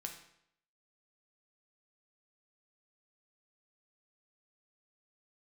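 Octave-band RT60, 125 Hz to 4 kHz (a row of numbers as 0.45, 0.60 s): 0.70, 0.70, 0.70, 0.70, 0.70, 0.65 s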